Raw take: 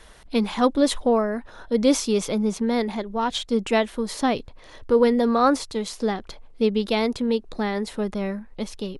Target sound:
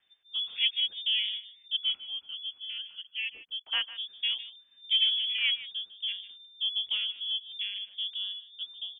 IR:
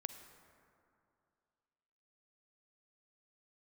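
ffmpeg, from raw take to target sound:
-filter_complex "[0:a]asettb=1/sr,asplit=3[link_01][link_02][link_03];[link_01]atrim=end=1.764[link_04];[link_02]atrim=start=1.76:end=3.88,asetpts=PTS-STARTPTS,afade=type=in:duration=0.004:curve=qsin,afade=type=out:start_time=2.116:duration=0.004:curve=qsin,highpass=410[link_05];[link_03]atrim=start=3.876[link_06];[link_04][link_05]acrossfade=duration=0.004:curve1=hsin:curve2=qsin[link_07];[link_07][link_06]acrossfade=duration=0.004:curve1=qsin:curve2=hsin,afwtdn=0.0562,tremolo=f=1.6:d=0.35,aecho=1:1:152:0.168,lowpass=frequency=3100:width_type=q:width=0.5098,lowpass=frequency=3100:width_type=q:width=0.6013,lowpass=frequency=3100:width_type=q:width=0.9,lowpass=frequency=3100:width_type=q:width=2.563,afreqshift=-3600,volume=-8dB"

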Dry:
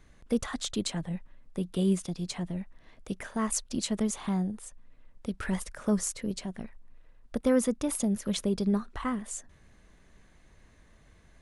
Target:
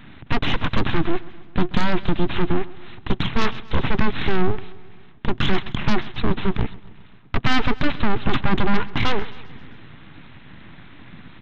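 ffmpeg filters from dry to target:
ffmpeg -i in.wav -filter_complex "[0:a]highpass=frequency=75:width=0.5412,highpass=frequency=75:width=1.3066,aresample=8000,aeval=exprs='abs(val(0))':channel_layout=same,aresample=44100,acontrast=59,asplit=2[link_01][link_02];[link_02]aeval=exprs='0.376*sin(PI/2*4.47*val(0)/0.376)':channel_layout=same,volume=-8dB[link_03];[link_01][link_03]amix=inputs=2:normalize=0,equalizer=frequency=125:width_type=o:width=1:gain=9,equalizer=frequency=250:width_type=o:width=1:gain=6,equalizer=frequency=500:width_type=o:width=1:gain=-9,aecho=1:1:132|264|396|528|660:0.1|0.058|0.0336|0.0195|0.0113,volume=2.5dB" out.wav

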